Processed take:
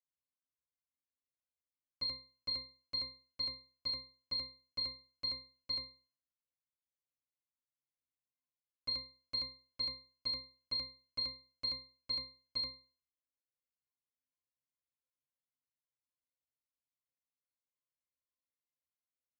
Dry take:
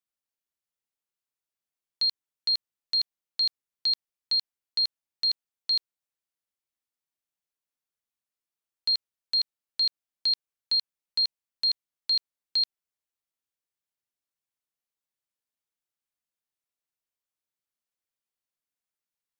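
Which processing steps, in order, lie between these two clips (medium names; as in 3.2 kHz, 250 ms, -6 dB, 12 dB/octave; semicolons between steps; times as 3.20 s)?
formants flattened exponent 0.3; pitch-class resonator C, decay 0.36 s; trim +6.5 dB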